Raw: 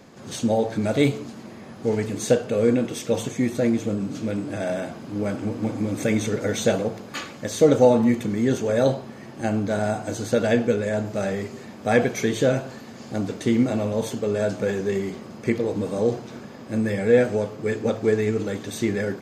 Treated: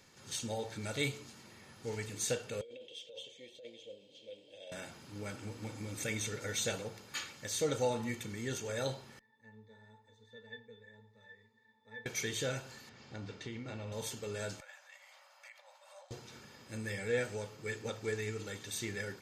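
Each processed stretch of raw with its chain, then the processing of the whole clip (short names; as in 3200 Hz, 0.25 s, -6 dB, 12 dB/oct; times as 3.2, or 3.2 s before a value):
2.61–4.72 double band-pass 1300 Hz, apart 2.6 oct + negative-ratio compressor -31 dBFS
9.19–12.06 HPF 770 Hz 6 dB/oct + octave resonator A, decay 0.15 s
12.89–13.92 doubler 37 ms -14 dB + compressor 4:1, threshold -21 dBFS + air absorption 160 m
14.6–16.11 bell 8200 Hz -9 dB 2.9 oct + compressor 4:1, threshold -28 dBFS + brick-wall FIR high-pass 530 Hz
whole clip: passive tone stack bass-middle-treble 5-5-5; comb 2.2 ms, depth 38%; gain +1 dB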